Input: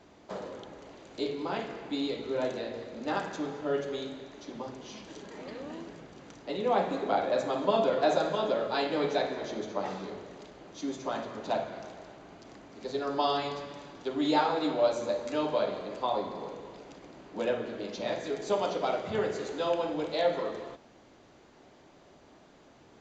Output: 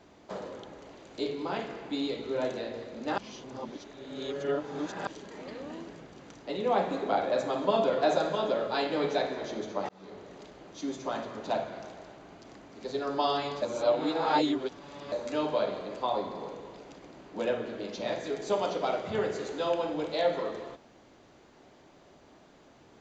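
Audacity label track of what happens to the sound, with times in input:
3.180000	5.070000	reverse
9.890000	10.540000	fade in equal-power
13.620000	15.120000	reverse

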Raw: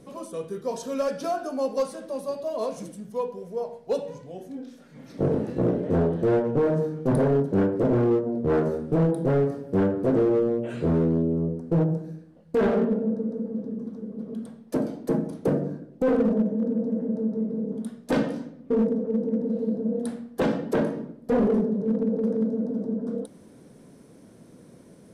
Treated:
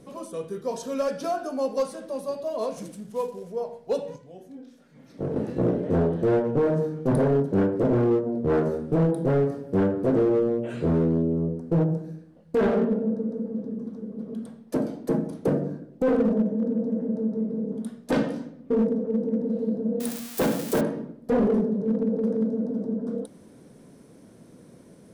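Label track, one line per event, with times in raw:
2.770000	3.520000	variable-slope delta modulation 64 kbit/s
4.160000	5.360000	clip gain −6 dB
20.000000	20.810000	spike at every zero crossing of −21.5 dBFS

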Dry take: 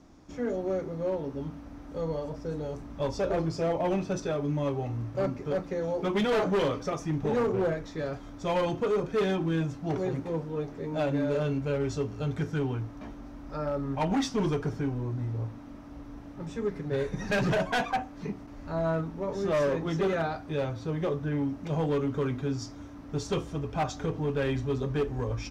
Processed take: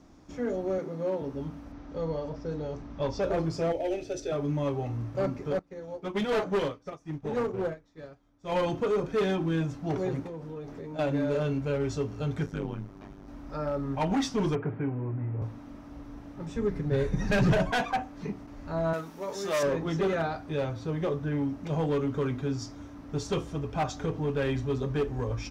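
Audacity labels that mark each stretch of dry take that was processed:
0.780000	1.220000	high-pass filter 140 Hz 24 dB per octave
1.720000	3.220000	low-pass filter 6,100 Hz 24 dB per octave
3.720000	4.320000	phaser with its sweep stopped centre 440 Hz, stages 4
5.590000	8.520000	expander for the loud parts 2.5 to 1, over −39 dBFS
10.260000	10.990000	downward compressor 5 to 1, threshold −36 dBFS
12.460000	13.280000	amplitude modulation modulator 100 Hz, depth 100%
14.550000	15.420000	elliptic band-pass filter 100–2,400 Hz
16.560000	17.710000	low-shelf EQ 150 Hz +11 dB
18.930000	19.630000	RIAA equalisation recording

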